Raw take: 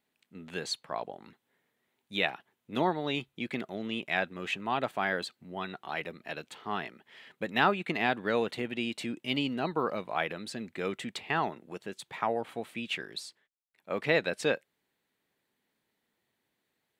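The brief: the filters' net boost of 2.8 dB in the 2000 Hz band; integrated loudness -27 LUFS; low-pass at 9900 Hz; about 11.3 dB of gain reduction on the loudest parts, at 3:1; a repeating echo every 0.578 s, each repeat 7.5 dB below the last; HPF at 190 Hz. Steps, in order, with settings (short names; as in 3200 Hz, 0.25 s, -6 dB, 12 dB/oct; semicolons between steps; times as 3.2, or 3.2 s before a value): HPF 190 Hz; LPF 9900 Hz; bell 2000 Hz +3.5 dB; compressor 3:1, threshold -35 dBFS; feedback echo 0.578 s, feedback 42%, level -7.5 dB; gain +11.5 dB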